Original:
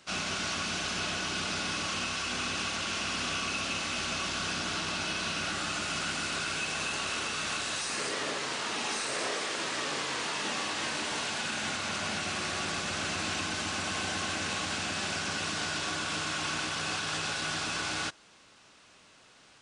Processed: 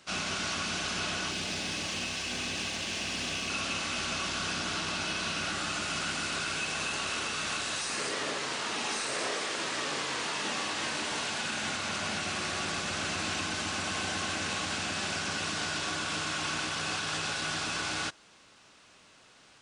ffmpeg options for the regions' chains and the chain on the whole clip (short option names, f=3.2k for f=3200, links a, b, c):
-filter_complex "[0:a]asettb=1/sr,asplit=3[a][b][c];[a]atrim=end=1.314[d];[b]atrim=start=1.31:end=3.5,asetpts=PTS-STARTPTS,afade=t=in:d=0.004:c=qsin,afade=t=out:st=2.186:d=0.004:c=qsin,equalizer=f=1.1k:w=2.8:g=-6.5,bandreject=f=1.4k:w=6.9,aeval=exprs='sgn(val(0))*max(abs(val(0))-0.00106,0)':c=same[e];[c]atrim=start=3.496[f];[d][e]acrossfade=d=0.004:c1=hsin:c2=qsin[g];[g][f]acrossfade=d=0.004:c1=qsin:c2=hsin"